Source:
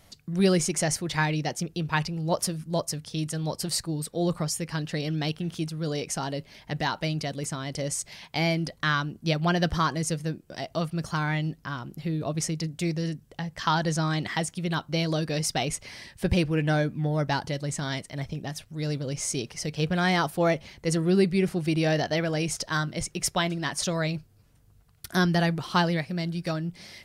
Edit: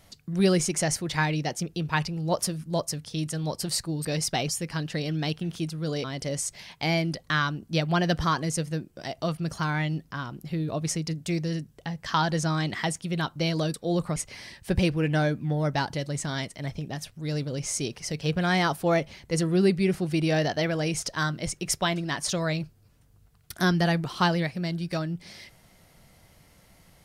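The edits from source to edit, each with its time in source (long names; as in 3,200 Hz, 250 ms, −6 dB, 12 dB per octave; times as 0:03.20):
0:04.05–0:04.47: swap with 0:15.27–0:15.70
0:06.03–0:07.57: remove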